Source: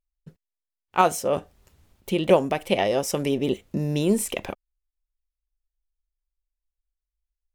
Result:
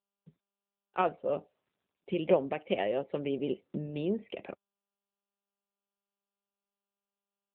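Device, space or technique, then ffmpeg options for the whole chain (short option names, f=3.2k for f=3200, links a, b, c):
mobile call with aggressive noise cancelling: -af "highpass=180,equalizer=f=250:t=o:w=1:g=-3,equalizer=f=1k:t=o:w=1:g=-7,equalizer=f=4k:t=o:w=1:g=-8,equalizer=f=8k:t=o:w=1:g=5,afftdn=nr=26:nf=-47,volume=-5dB" -ar 8000 -c:a libopencore_amrnb -b:a 10200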